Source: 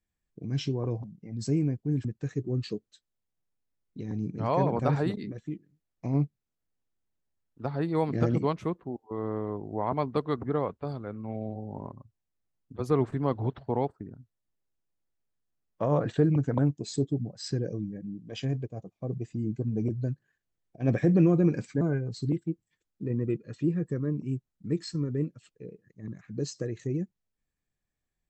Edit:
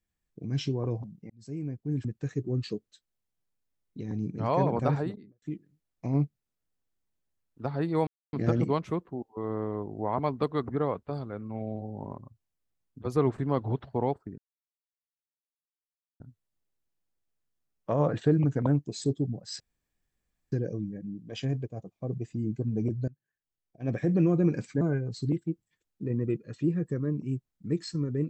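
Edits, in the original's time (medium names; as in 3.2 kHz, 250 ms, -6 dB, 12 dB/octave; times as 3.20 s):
1.30–2.13 s: fade in
4.80–5.42 s: studio fade out
8.07 s: insert silence 0.26 s
14.12 s: insert silence 1.82 s
17.52 s: insert room tone 0.92 s
20.08–21.65 s: fade in, from -23 dB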